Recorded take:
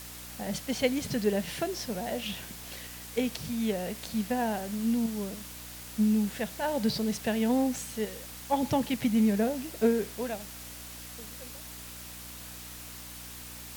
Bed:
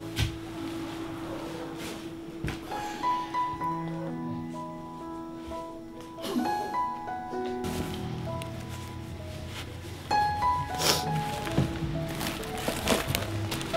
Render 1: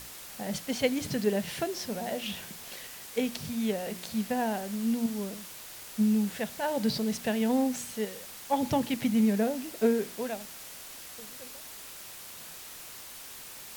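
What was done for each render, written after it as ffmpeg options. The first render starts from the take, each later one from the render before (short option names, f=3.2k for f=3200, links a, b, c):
-af "bandreject=f=60:t=h:w=4,bandreject=f=120:t=h:w=4,bandreject=f=180:t=h:w=4,bandreject=f=240:t=h:w=4,bandreject=f=300:t=h:w=4,bandreject=f=360:t=h:w=4"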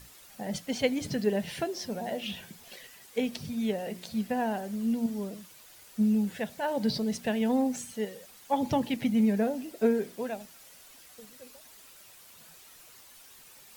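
-af "afftdn=nr=10:nf=-45"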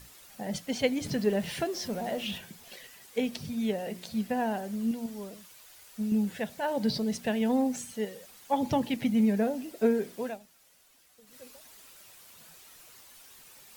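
-filter_complex "[0:a]asettb=1/sr,asplit=3[a][b][c];[a]atrim=end=1.064[d];[b]atrim=start=1.06:end=2.38,asetpts=PTS-STARTPTS,afade=t=in:d=0.004:c=qsin,afade=t=out:st=1.316:d=0.004:c=qsin,aeval=exprs='val(0)+0.5*0.00708*sgn(val(0))':c=same[e];[c]atrim=start=2.376[f];[d][e]acrossfade=d=0.004:c1=hsin:c2=qsin[g];[g][f]acrossfade=d=0.004:c1=qsin:c2=hsin,asettb=1/sr,asplit=3[h][i][j];[h]atrim=end=4.914[k];[i]atrim=start=4.91:end=6.12,asetpts=PTS-STARTPTS,afade=t=in:d=0.004:c=qsin,afade=t=out:st=1.206:d=0.004:c=qsin,equalizer=f=200:t=o:w=2.3:g=-7[l];[j]atrim=start=6.116[m];[k][l]acrossfade=d=0.004:c1=hsin:c2=qsin[n];[n][m]acrossfade=d=0.004:c1=qsin:c2=hsin,asplit=3[o][p][q];[o]atrim=end=10.4,asetpts=PTS-STARTPTS,afade=t=out:st=10.28:d=0.12:silence=0.334965[r];[p]atrim=start=10.4:end=11.25,asetpts=PTS-STARTPTS,volume=-9.5dB[s];[q]atrim=start=11.25,asetpts=PTS-STARTPTS,afade=t=in:d=0.12:silence=0.334965[t];[r][s][t]concat=n=3:v=0:a=1"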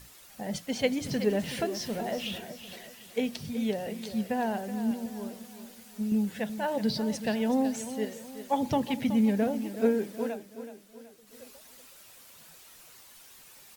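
-af "aecho=1:1:374|748|1122|1496:0.251|0.105|0.0443|0.0186"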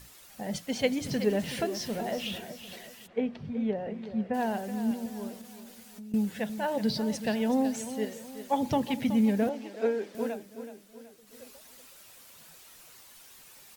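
-filter_complex "[0:a]asplit=3[a][b][c];[a]afade=t=out:st=3.06:d=0.02[d];[b]lowpass=1.7k,afade=t=in:st=3.06:d=0.02,afade=t=out:st=4.33:d=0.02[e];[c]afade=t=in:st=4.33:d=0.02[f];[d][e][f]amix=inputs=3:normalize=0,asettb=1/sr,asplit=3[g][h][i];[g]atrim=end=5.414[j];[h]atrim=start=5.41:end=6.14,asetpts=PTS-STARTPTS,afade=t=in:d=0.004:c=qsin,afade=t=out:st=0.726:d=0.004:c=qsin,acompressor=threshold=-42dB:ratio=6:attack=3.2:release=140:knee=1:detection=peak[k];[i]atrim=start=6.136[l];[j][k]acrossfade=d=0.004:c1=hsin:c2=qsin[m];[m][l]acrossfade=d=0.004:c1=qsin:c2=hsin,asettb=1/sr,asplit=3[n][o][p];[n]atrim=end=9.494[q];[o]atrim=start=9.49:end=10.15,asetpts=PTS-STARTPTS,afade=t=in:d=0.004:c=qsin,afade=t=out:st=0.656:d=0.004:c=qsin,acrossover=split=310 6600:gain=0.141 1 0.178[r][s][t];[r][s][t]amix=inputs=3:normalize=0[u];[p]atrim=start=10.146[v];[q][u]acrossfade=d=0.004:c1=hsin:c2=qsin[w];[w][v]acrossfade=d=0.004:c1=qsin:c2=hsin"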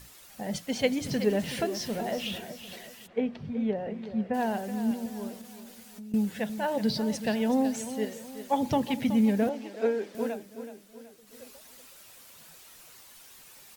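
-af "volume=1dB"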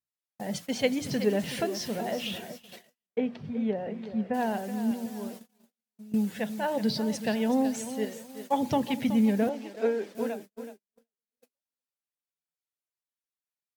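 -af "highpass=90,agate=range=-47dB:threshold=-42dB:ratio=16:detection=peak"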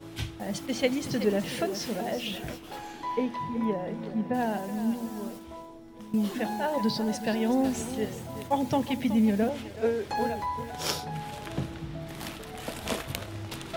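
-filter_complex "[1:a]volume=-6dB[a];[0:a][a]amix=inputs=2:normalize=0"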